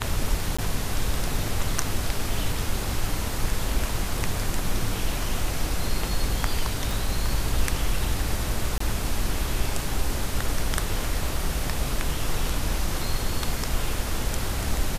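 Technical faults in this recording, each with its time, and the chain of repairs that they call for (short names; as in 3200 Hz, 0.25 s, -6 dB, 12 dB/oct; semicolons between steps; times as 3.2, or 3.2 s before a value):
0.57–0.58 gap 15 ms
6.91 pop
8.78–8.8 gap 24 ms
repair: de-click; interpolate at 0.57, 15 ms; interpolate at 8.78, 24 ms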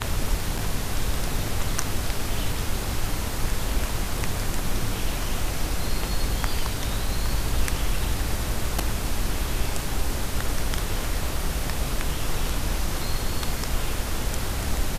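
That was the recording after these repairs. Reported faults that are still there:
none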